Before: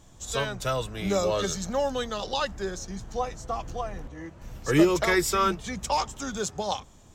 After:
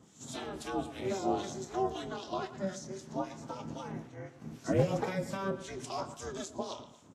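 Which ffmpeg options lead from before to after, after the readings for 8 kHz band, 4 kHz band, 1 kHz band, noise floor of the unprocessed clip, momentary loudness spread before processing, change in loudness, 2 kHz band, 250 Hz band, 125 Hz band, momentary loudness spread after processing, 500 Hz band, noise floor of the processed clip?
−12.5 dB, −13.0 dB, −9.0 dB, −52 dBFS, 13 LU, −9.0 dB, −14.0 dB, −8.0 dB, −4.5 dB, 12 LU, −8.0 dB, −57 dBFS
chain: -filter_complex "[0:a]acrossover=split=1600[link_01][link_02];[link_01]aeval=exprs='val(0)*(1-0.7/2+0.7/2*cos(2*PI*3.8*n/s))':channel_layout=same[link_03];[link_02]aeval=exprs='val(0)*(1-0.7/2-0.7/2*cos(2*PI*3.8*n/s))':channel_layout=same[link_04];[link_03][link_04]amix=inputs=2:normalize=0,asplit=2[link_05][link_06];[link_06]adelay=113,lowpass=frequency=2900:poles=1,volume=-14dB,asplit=2[link_07][link_08];[link_08]adelay=113,lowpass=frequency=2900:poles=1,volume=0.39,asplit=2[link_09][link_10];[link_10]adelay=113,lowpass=frequency=2900:poles=1,volume=0.39,asplit=2[link_11][link_12];[link_12]adelay=113,lowpass=frequency=2900:poles=1,volume=0.39[link_13];[link_05][link_07][link_09][link_11][link_13]amix=inputs=5:normalize=0,aeval=exprs='val(0)*sin(2*PI*190*n/s)':channel_layout=same,highpass=100,asplit=2[link_14][link_15];[link_15]adelay=26,volume=-13dB[link_16];[link_14][link_16]amix=inputs=2:normalize=0,acrossover=split=870[link_17][link_18];[link_18]acompressor=threshold=-44dB:ratio=6[link_19];[link_17][link_19]amix=inputs=2:normalize=0" -ar 32000 -c:a libvorbis -b:a 32k

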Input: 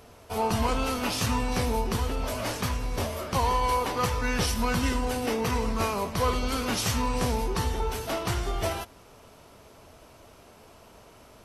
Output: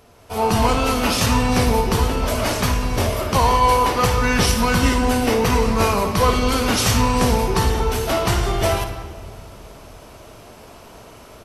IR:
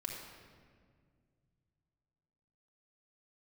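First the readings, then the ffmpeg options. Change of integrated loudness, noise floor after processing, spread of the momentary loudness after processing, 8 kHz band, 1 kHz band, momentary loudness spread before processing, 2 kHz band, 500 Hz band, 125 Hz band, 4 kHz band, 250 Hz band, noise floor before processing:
+9.5 dB, −43 dBFS, 5 LU, +9.0 dB, +9.5 dB, 5 LU, +9.5 dB, +10.0 dB, +10.0 dB, +9.5 dB, +10.0 dB, −53 dBFS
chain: -filter_complex "[0:a]asplit=2[link_01][link_02];[link_02]adelay=190,highpass=300,lowpass=3400,asoftclip=type=hard:threshold=-24dB,volume=-18dB[link_03];[link_01][link_03]amix=inputs=2:normalize=0,asplit=2[link_04][link_05];[1:a]atrim=start_sample=2205,asetrate=48510,aresample=44100,adelay=56[link_06];[link_05][link_06]afir=irnorm=-1:irlink=0,volume=-6dB[link_07];[link_04][link_07]amix=inputs=2:normalize=0,dynaudnorm=framelen=140:gausssize=5:maxgain=9dB"

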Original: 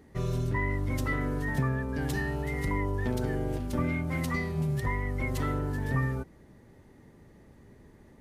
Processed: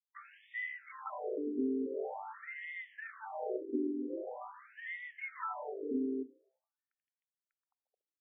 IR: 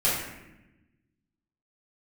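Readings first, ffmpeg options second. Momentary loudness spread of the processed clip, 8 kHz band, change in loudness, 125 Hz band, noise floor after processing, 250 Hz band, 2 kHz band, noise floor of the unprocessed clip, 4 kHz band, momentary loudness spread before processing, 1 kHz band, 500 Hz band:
11 LU, below −30 dB, −8.5 dB, below −40 dB, below −85 dBFS, −6.0 dB, −8.5 dB, −56 dBFS, below −15 dB, 2 LU, −6.5 dB, −4.0 dB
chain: -filter_complex "[0:a]aeval=exprs='sgn(val(0))*max(abs(val(0))-0.00596,0)':channel_layout=same,equalizer=frequency=3300:width_type=o:width=2.5:gain=-9.5,bandreject=frequency=50:width_type=h:width=6,bandreject=frequency=100:width_type=h:width=6,bandreject=frequency=150:width_type=h:width=6,bandreject=frequency=200:width_type=h:width=6,bandreject=frequency=250:width_type=h:width=6,asplit=2[link_01][link_02];[1:a]atrim=start_sample=2205[link_03];[link_02][link_03]afir=irnorm=-1:irlink=0,volume=-32.5dB[link_04];[link_01][link_04]amix=inputs=2:normalize=0,afftfilt=real='re*between(b*sr/1024,310*pow(2600/310,0.5+0.5*sin(2*PI*0.45*pts/sr))/1.41,310*pow(2600/310,0.5+0.5*sin(2*PI*0.45*pts/sr))*1.41)':imag='im*between(b*sr/1024,310*pow(2600/310,0.5+0.5*sin(2*PI*0.45*pts/sr))/1.41,310*pow(2600/310,0.5+0.5*sin(2*PI*0.45*pts/sr))*1.41)':win_size=1024:overlap=0.75,volume=4.5dB"

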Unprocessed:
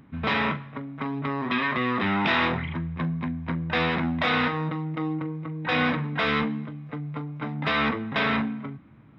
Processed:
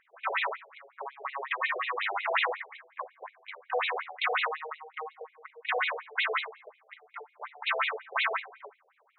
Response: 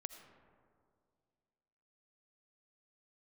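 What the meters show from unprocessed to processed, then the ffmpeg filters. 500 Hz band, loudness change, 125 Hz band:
−5.0 dB, −5.0 dB, below −40 dB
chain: -af "afftfilt=real='re*between(b*sr/1024,540*pow(3100/540,0.5+0.5*sin(2*PI*5.5*pts/sr))/1.41,540*pow(3100/540,0.5+0.5*sin(2*PI*5.5*pts/sr))*1.41)':imag='im*between(b*sr/1024,540*pow(3100/540,0.5+0.5*sin(2*PI*5.5*pts/sr))/1.41,540*pow(3100/540,0.5+0.5*sin(2*PI*5.5*pts/sr))*1.41)':win_size=1024:overlap=0.75,volume=2dB"

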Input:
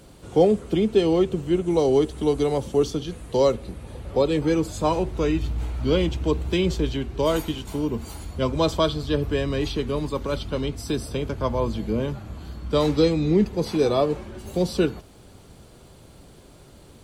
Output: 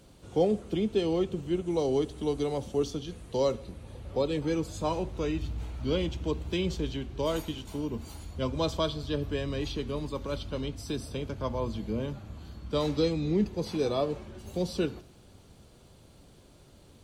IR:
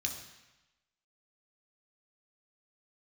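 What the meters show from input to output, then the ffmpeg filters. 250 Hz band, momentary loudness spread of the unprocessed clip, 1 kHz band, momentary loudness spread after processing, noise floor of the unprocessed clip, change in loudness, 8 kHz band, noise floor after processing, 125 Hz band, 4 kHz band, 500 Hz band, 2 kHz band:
−7.5 dB, 9 LU, −8.0 dB, 9 LU, −49 dBFS, −7.5 dB, −7.0 dB, −56 dBFS, −7.0 dB, −6.0 dB, −8.0 dB, −7.5 dB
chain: -filter_complex "[0:a]asplit=2[link_01][link_02];[link_02]lowpass=frequency=11000:width=0.5412,lowpass=frequency=11000:width=1.3066[link_03];[1:a]atrim=start_sample=2205,highshelf=frequency=11000:gain=10[link_04];[link_03][link_04]afir=irnorm=-1:irlink=0,volume=-16dB[link_05];[link_01][link_05]amix=inputs=2:normalize=0,volume=-8dB"

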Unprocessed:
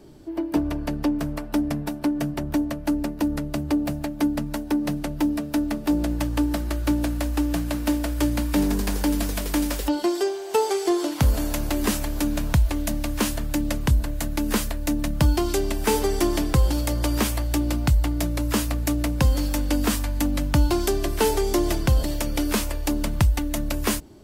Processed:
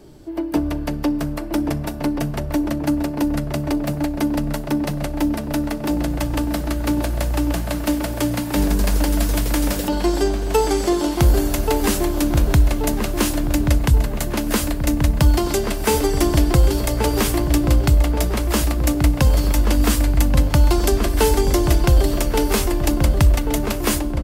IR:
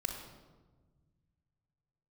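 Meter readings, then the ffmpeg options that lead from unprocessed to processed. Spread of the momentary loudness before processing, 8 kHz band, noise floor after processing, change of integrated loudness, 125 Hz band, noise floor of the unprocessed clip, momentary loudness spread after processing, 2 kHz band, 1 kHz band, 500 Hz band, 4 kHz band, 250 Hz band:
4 LU, +4.5 dB, −26 dBFS, +4.5 dB, +6.0 dB, −34 dBFS, 6 LU, +4.0 dB, +4.5 dB, +4.5 dB, +4.0 dB, +3.0 dB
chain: -filter_complex "[0:a]asplit=2[link_01][link_02];[link_02]adelay=1131,lowpass=frequency=1700:poles=1,volume=-4dB,asplit=2[link_03][link_04];[link_04]adelay=1131,lowpass=frequency=1700:poles=1,volume=0.48,asplit=2[link_05][link_06];[link_06]adelay=1131,lowpass=frequency=1700:poles=1,volume=0.48,asplit=2[link_07][link_08];[link_08]adelay=1131,lowpass=frequency=1700:poles=1,volume=0.48,asplit=2[link_09][link_10];[link_10]adelay=1131,lowpass=frequency=1700:poles=1,volume=0.48,asplit=2[link_11][link_12];[link_12]adelay=1131,lowpass=frequency=1700:poles=1,volume=0.48[link_13];[link_01][link_03][link_05][link_07][link_09][link_11][link_13]amix=inputs=7:normalize=0,asplit=2[link_14][link_15];[1:a]atrim=start_sample=2205,asetrate=42336,aresample=44100,highshelf=frequency=4400:gain=9.5[link_16];[link_15][link_16]afir=irnorm=-1:irlink=0,volume=-17dB[link_17];[link_14][link_17]amix=inputs=2:normalize=0,volume=2.5dB"

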